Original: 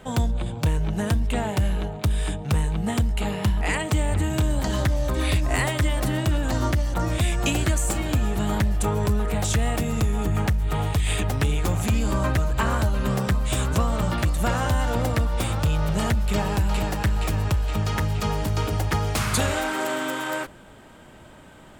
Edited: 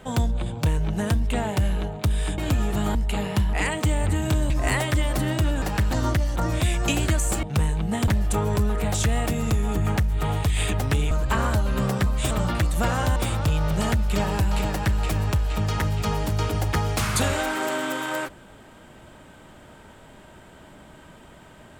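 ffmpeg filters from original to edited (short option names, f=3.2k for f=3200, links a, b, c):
-filter_complex "[0:a]asplit=11[a][b][c][d][e][f][g][h][i][j][k];[a]atrim=end=2.382[l];[b]atrim=start=8.008:end=8.582[m];[c]atrim=start=3.028:end=4.582[n];[d]atrim=start=5.368:end=6.492[o];[e]atrim=start=16.878:end=17.172[p];[f]atrim=start=6.488:end=8.012[q];[g]atrim=start=2.378:end=3.032[r];[h]atrim=start=8.578:end=11.612[s];[i]atrim=start=12.388:end=13.592[t];[j]atrim=start=13.938:end=14.792[u];[k]atrim=start=15.338[v];[l][m]acrossfade=d=0.004:c1=hsin:c2=hsin[w];[w][n]acrossfade=d=0.004:c1=hsin:c2=hsin[x];[x][o]acrossfade=d=0.004:c1=hsin:c2=hsin[y];[y][p]acrossfade=d=0.004:c1=hsin:c2=hsin[z];[z][q]acrossfade=d=0.004:c1=hsin:c2=hsin[aa];[aa][r]acrossfade=d=0.004:c1=hsin:c2=hsin[ab];[ab][s]acrossfade=d=0.004:c1=hsin:c2=hsin[ac];[ac][t]acrossfade=d=0.004:c1=hsin:c2=hsin[ad];[ad][u]acrossfade=d=0.004:c1=hsin:c2=hsin[ae];[ae][v]acrossfade=d=0.004:c1=hsin:c2=hsin"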